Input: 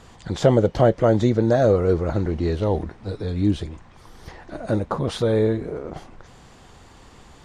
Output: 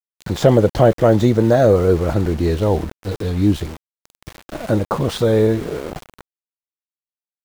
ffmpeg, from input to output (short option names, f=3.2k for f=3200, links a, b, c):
-af "acontrast=24,aeval=exprs='val(0)*gte(abs(val(0)),0.0316)':c=same"